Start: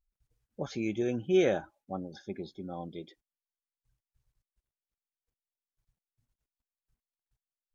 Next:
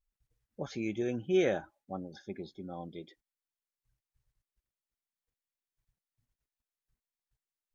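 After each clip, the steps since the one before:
parametric band 1,900 Hz +3.5 dB 0.37 octaves
level −2.5 dB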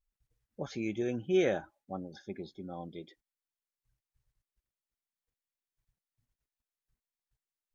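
no processing that can be heard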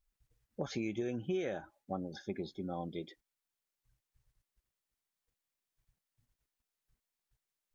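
downward compressor 10 to 1, threshold −36 dBFS, peak gain reduction 14 dB
level +3.5 dB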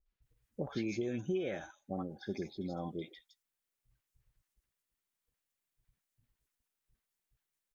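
three-band delay without the direct sound lows, mids, highs 60/220 ms, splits 770/4,800 Hz
level +1 dB

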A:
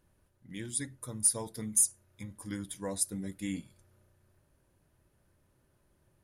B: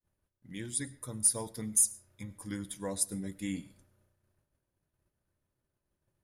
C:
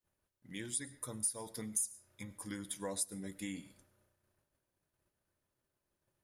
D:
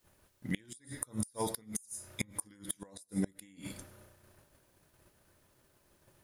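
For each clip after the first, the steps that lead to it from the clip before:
downward expander −60 dBFS; convolution reverb RT60 0.50 s, pre-delay 60 ms, DRR 20 dB
downward compressor 4 to 1, threshold −36 dBFS, peak gain reduction 13 dB; low-shelf EQ 230 Hz −9 dB; level +1.5 dB
downward compressor 8 to 1, threshold −42 dBFS, peak gain reduction 12 dB; gate with flip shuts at −37 dBFS, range −29 dB; level +17 dB

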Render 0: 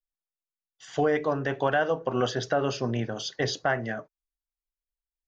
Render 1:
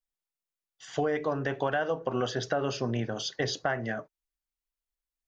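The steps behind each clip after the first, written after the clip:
downward compressor 2.5 to 1, threshold −26 dBFS, peak gain reduction 5 dB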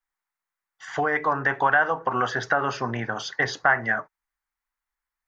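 flat-topped bell 1,300 Hz +13.5 dB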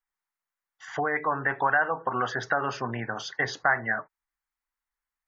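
gate on every frequency bin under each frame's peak −30 dB strong
level −3.5 dB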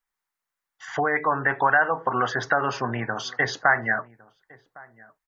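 slap from a distant wall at 190 metres, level −23 dB
level +4 dB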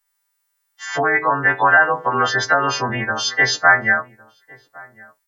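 every partial snapped to a pitch grid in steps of 2 semitones
level +5 dB

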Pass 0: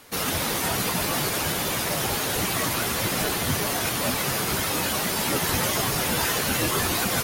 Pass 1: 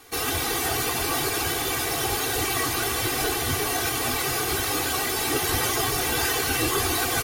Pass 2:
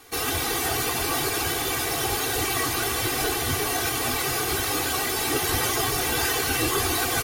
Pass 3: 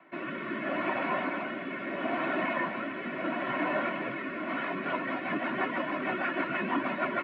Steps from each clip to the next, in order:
comb filter 2.6 ms, depth 93%; level −2.5 dB
no processing that can be heard
rotating-speaker cabinet horn 0.75 Hz, later 6.3 Hz, at 0:04.30; single-sideband voice off tune −120 Hz 360–2,500 Hz

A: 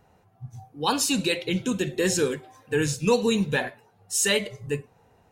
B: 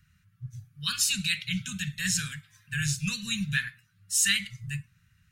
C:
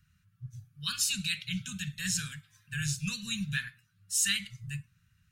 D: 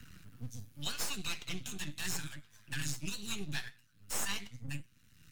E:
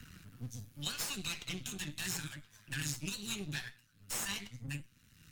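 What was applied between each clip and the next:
inverse Chebyshev band-stop filter 280–900 Hz, stop band 40 dB
parametric band 2,000 Hz −4.5 dB 0.41 octaves; level −3.5 dB
half-wave rectification; flanger 0.8 Hz, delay 3.8 ms, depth 6.6 ms, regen +68%; multiband upward and downward compressor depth 70%; level +2.5 dB
tube saturation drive 25 dB, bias 0.5; level +4 dB

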